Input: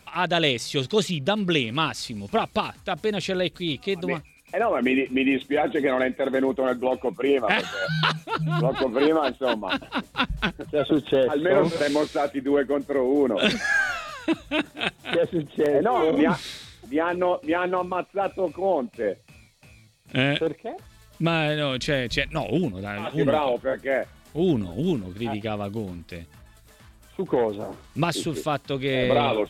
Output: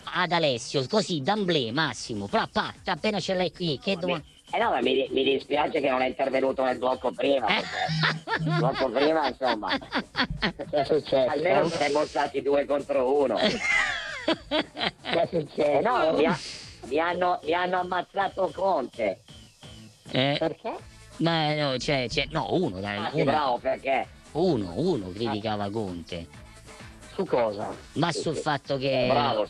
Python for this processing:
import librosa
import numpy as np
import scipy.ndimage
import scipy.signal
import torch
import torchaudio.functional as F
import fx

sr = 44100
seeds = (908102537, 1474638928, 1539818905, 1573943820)

y = fx.freq_compress(x, sr, knee_hz=3800.0, ratio=1.5)
y = fx.formant_shift(y, sr, semitones=4)
y = fx.band_squash(y, sr, depth_pct=40)
y = y * librosa.db_to_amplitude(-1.5)